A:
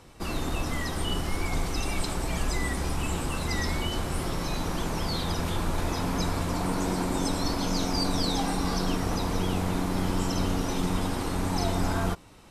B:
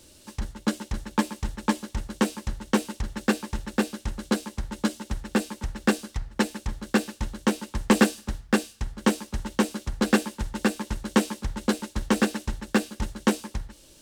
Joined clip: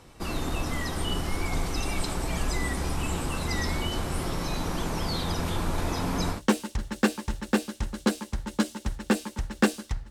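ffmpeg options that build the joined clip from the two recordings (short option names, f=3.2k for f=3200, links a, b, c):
-filter_complex "[0:a]apad=whole_dur=10.1,atrim=end=10.1,atrim=end=6.42,asetpts=PTS-STARTPTS[a];[1:a]atrim=start=2.55:end=6.35,asetpts=PTS-STARTPTS[b];[a][b]acrossfade=d=0.12:c1=tri:c2=tri"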